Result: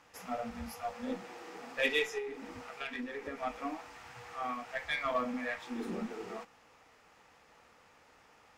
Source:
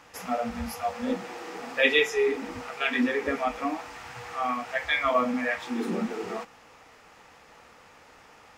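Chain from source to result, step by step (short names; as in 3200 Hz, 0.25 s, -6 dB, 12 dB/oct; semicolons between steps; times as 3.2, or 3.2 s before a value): added harmonics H 8 -29 dB, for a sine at -8.5 dBFS; 2.18–3.43 compressor 6:1, threshold -28 dBFS, peak gain reduction 8 dB; gain -9 dB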